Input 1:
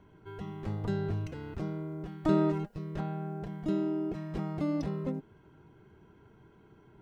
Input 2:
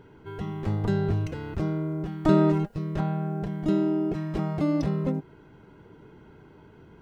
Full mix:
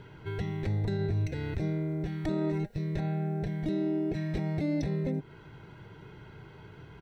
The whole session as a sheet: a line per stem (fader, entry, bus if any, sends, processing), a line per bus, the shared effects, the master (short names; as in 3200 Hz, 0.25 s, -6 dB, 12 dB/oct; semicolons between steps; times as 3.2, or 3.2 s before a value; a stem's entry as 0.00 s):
+1.0 dB, 0.00 s, no send, dry
+0.5 dB, 0.5 ms, no send, ten-band EQ 125 Hz +8 dB, 250 Hz -10 dB, 2000 Hz +5 dB, 4000 Hz +7 dB; compressor 4:1, threshold -34 dBFS, peak gain reduction 15 dB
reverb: off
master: limiter -22.5 dBFS, peak gain reduction 10 dB